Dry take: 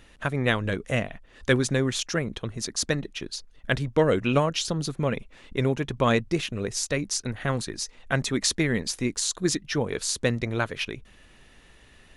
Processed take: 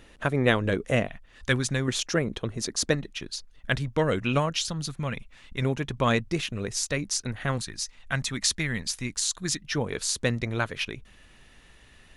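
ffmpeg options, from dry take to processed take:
-af "asetnsamples=n=441:p=0,asendcmd='1.07 equalizer g -7.5;1.88 equalizer g 3;2.95 equalizer g -5;4.65 equalizer g -11.5;5.62 equalizer g -3.5;7.58 equalizer g -12.5;9.61 equalizer g -3',equalizer=f=410:t=o:w=1.7:g=4"

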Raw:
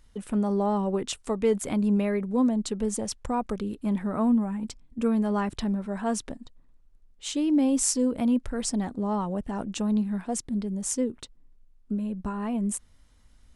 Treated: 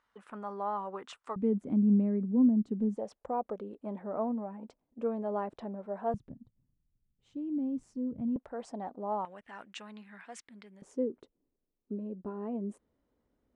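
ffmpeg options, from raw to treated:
-af "asetnsamples=n=441:p=0,asendcmd='1.36 bandpass f 230;2.97 bandpass f 600;6.14 bandpass f 130;8.36 bandpass f 710;9.25 bandpass f 2000;10.82 bandpass f 410',bandpass=f=1.2k:t=q:w=1.9:csg=0"

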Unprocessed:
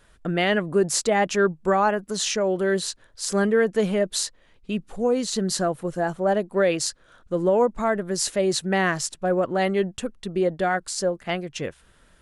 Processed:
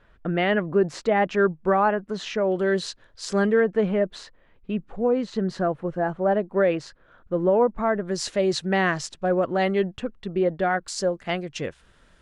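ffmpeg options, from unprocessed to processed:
-af "asetnsamples=n=441:p=0,asendcmd='2.52 lowpass f 4900;3.6 lowpass f 2100;8.05 lowpass f 5100;9.96 lowpass f 3000;10.88 lowpass f 7000',lowpass=2.5k"

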